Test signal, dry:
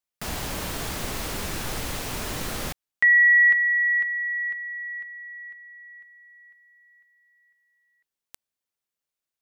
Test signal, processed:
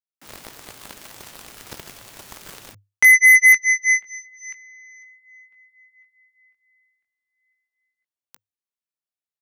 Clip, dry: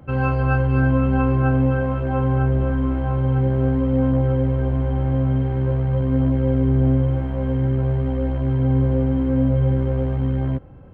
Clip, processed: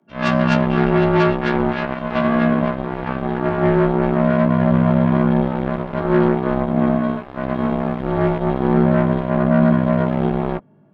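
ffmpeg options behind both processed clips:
ffmpeg -i in.wav -af "bandreject=frequency=400:width=12,dynaudnorm=framelen=140:gausssize=3:maxgain=8dB,flanger=delay=17:depth=4:speed=0.21,afreqshift=100,aeval=exprs='0.596*(cos(1*acos(clip(val(0)/0.596,-1,1)))-cos(1*PI/2))+0.00422*(cos(5*acos(clip(val(0)/0.596,-1,1)))-cos(5*PI/2))+0.106*(cos(7*acos(clip(val(0)/0.596,-1,1)))-cos(7*PI/2))':channel_layout=same" out.wav

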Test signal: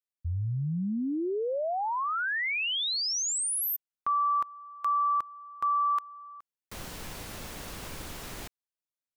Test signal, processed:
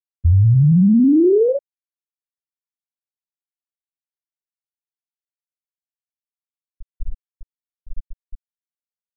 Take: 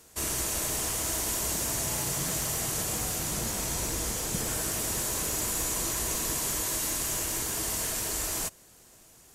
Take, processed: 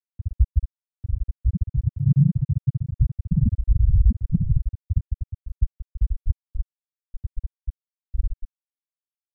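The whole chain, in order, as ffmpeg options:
ffmpeg -i in.wav -filter_complex "[0:a]asplit=2[link_01][link_02];[link_02]adelay=62,lowpass=frequency=1100:poles=1,volume=-9.5dB,asplit=2[link_03][link_04];[link_04]adelay=62,lowpass=frequency=1100:poles=1,volume=0.39,asplit=2[link_05][link_06];[link_06]adelay=62,lowpass=frequency=1100:poles=1,volume=0.39,asplit=2[link_07][link_08];[link_08]adelay=62,lowpass=frequency=1100:poles=1,volume=0.39[link_09];[link_01][link_03][link_05][link_07][link_09]amix=inputs=5:normalize=0,aeval=exprs='0.15*sin(PI/2*1.78*val(0)/0.15)':channel_layout=same,acrossover=split=350|5900[link_10][link_11][link_12];[link_11]acompressor=threshold=-34dB:ratio=10:attack=0.14:release=82:knee=2.83:detection=peak[link_13];[link_10][link_13][link_12]amix=inputs=3:normalize=0,highshelf=frequency=4700:gain=-12,acontrast=85,afftfilt=real='re*gte(hypot(re,im),0.794)':imag='im*gte(hypot(re,im),0.794)':win_size=1024:overlap=0.75,alimiter=level_in=17.5dB:limit=-1dB:release=50:level=0:latency=1,adynamicequalizer=threshold=0.0224:dfrequency=1900:dqfactor=0.7:tfrequency=1900:tqfactor=0.7:attack=5:release=100:ratio=0.375:range=2.5:mode=boostabove:tftype=highshelf,volume=-7.5dB" out.wav

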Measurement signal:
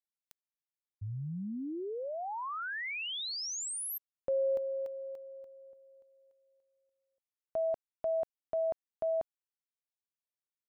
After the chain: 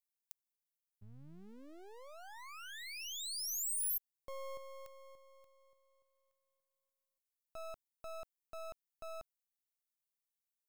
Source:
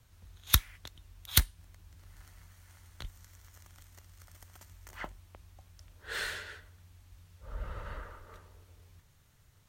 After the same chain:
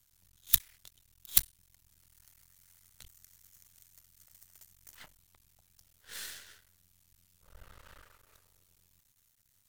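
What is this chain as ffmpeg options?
ffmpeg -i in.wav -af "aeval=exprs='max(val(0),0)':channel_layout=same,crystalizer=i=6:c=0,volume=-12.5dB" out.wav

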